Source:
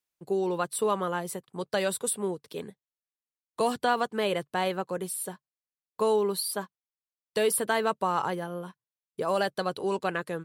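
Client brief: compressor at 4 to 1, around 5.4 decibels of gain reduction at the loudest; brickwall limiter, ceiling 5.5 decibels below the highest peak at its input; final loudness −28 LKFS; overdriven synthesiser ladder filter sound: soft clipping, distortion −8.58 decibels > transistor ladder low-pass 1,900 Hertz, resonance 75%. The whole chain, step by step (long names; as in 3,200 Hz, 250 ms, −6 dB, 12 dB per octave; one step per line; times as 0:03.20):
downward compressor 4 to 1, threshold −27 dBFS
brickwall limiter −22 dBFS
soft clipping −34.5 dBFS
transistor ladder low-pass 1,900 Hz, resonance 75%
level +21 dB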